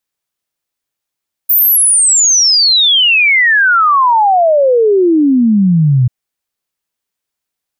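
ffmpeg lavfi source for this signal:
-f lavfi -i "aevalsrc='0.501*clip(min(t,4.59-t)/0.01,0,1)*sin(2*PI*15000*4.59/log(120/15000)*(exp(log(120/15000)*t/4.59)-1))':d=4.59:s=44100"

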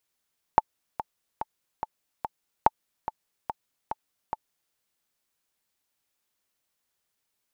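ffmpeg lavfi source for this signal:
-f lavfi -i "aevalsrc='pow(10,(-3-13.5*gte(mod(t,5*60/144),60/144))/20)*sin(2*PI*875*mod(t,60/144))*exp(-6.91*mod(t,60/144)/0.03)':d=4.16:s=44100"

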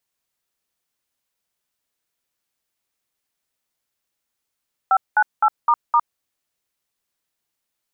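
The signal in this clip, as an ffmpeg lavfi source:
-f lavfi -i "aevalsrc='0.188*clip(min(mod(t,0.257),0.059-mod(t,0.257))/0.002,0,1)*(eq(floor(t/0.257),0)*(sin(2*PI*770*mod(t,0.257))+sin(2*PI*1336*mod(t,0.257)))+eq(floor(t/0.257),1)*(sin(2*PI*852*mod(t,0.257))+sin(2*PI*1477*mod(t,0.257)))+eq(floor(t/0.257),2)*(sin(2*PI*852*mod(t,0.257))+sin(2*PI*1336*mod(t,0.257)))+eq(floor(t/0.257),3)*(sin(2*PI*941*mod(t,0.257))+sin(2*PI*1209*mod(t,0.257)))+eq(floor(t/0.257),4)*(sin(2*PI*941*mod(t,0.257))+sin(2*PI*1209*mod(t,0.257))))':d=1.285:s=44100"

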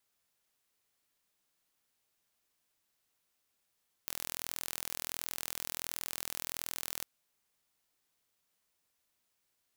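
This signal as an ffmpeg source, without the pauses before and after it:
-f lavfi -i "aevalsrc='0.299*eq(mod(n,1065),0)':d=2.97:s=44100"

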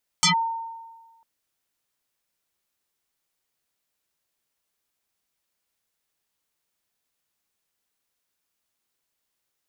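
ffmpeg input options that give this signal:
-f lavfi -i "aevalsrc='0.2*pow(10,-3*t/1.39)*sin(2*PI*912*t+7.5*clip(1-t/0.11,0,1)*sin(2*PI*1.19*912*t))':d=1:s=44100"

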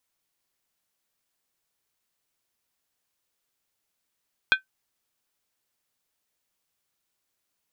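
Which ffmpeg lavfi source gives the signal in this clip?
-f lavfi -i "aevalsrc='0.266*pow(10,-3*t/0.12)*sin(2*PI*1540*t)+0.158*pow(10,-3*t/0.095)*sin(2*PI*2454.8*t)+0.0944*pow(10,-3*t/0.082)*sin(2*PI*3289.4*t)+0.0562*pow(10,-3*t/0.079)*sin(2*PI*3535.8*t)+0.0335*pow(10,-3*t/0.074)*sin(2*PI*4085.6*t)':d=0.63:s=44100"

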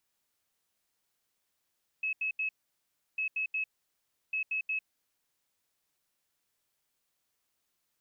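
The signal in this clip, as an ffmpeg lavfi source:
-f lavfi -i "aevalsrc='0.0355*sin(2*PI*2580*t)*clip(min(mod(mod(t,1.15),0.18),0.1-mod(mod(t,1.15),0.18))/0.005,0,1)*lt(mod(t,1.15),0.54)':d=3.45:s=44100"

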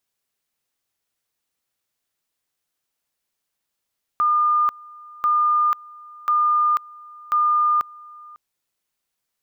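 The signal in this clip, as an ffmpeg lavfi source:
-f lavfi -i "aevalsrc='pow(10,(-15-24*gte(mod(t,1.04),0.49))/20)*sin(2*PI*1210*t)':d=4.16:s=44100"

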